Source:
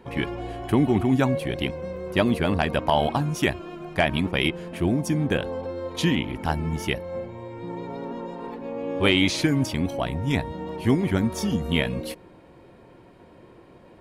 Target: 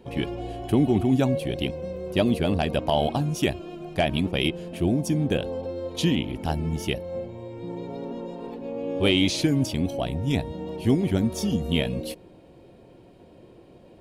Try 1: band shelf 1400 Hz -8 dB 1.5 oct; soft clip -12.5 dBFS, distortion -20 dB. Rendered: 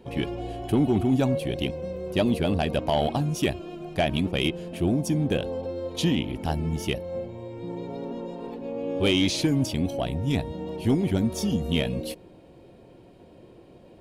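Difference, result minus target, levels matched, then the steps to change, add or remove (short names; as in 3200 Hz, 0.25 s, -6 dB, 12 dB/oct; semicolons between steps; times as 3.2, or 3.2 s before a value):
soft clip: distortion +16 dB
change: soft clip -3 dBFS, distortion -36 dB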